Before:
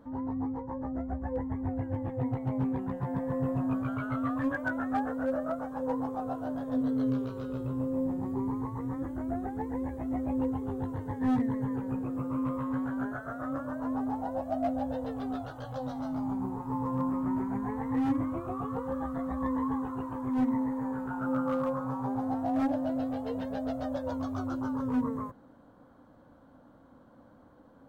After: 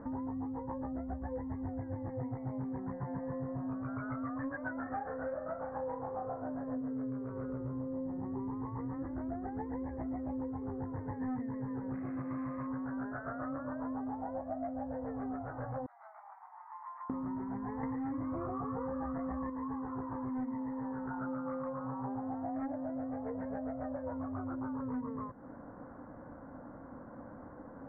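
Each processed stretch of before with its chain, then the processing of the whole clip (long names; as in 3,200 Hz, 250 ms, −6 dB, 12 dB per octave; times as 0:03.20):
0:04.83–0:06.42: double-tracking delay 29 ms −5 dB + flutter between parallel walls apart 6.9 metres, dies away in 0.25 s
0:11.93–0:12.67: log-companded quantiser 4 bits + notch comb filter 460 Hz
0:15.86–0:17.10: Butterworth high-pass 630 Hz 96 dB per octave + first difference + double-tracking delay 20 ms −11 dB
0:17.83–0:19.50: hard clipping −22.5 dBFS + envelope flattener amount 100%
whole clip: elliptic low-pass filter 2,000 Hz, stop band 40 dB; downward compressor, threshold −46 dBFS; level +8.5 dB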